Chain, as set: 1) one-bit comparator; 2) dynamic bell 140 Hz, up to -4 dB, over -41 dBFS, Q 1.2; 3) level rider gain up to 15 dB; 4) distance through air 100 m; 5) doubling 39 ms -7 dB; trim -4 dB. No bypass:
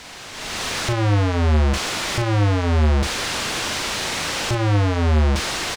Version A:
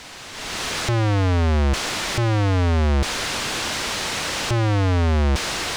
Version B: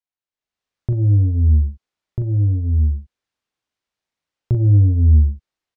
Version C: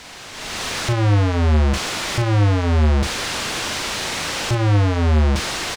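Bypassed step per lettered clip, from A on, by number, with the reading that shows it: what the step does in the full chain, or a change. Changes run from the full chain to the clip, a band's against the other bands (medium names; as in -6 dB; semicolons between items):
5, crest factor change -2.5 dB; 1, crest factor change +4.5 dB; 2, 125 Hz band +2.0 dB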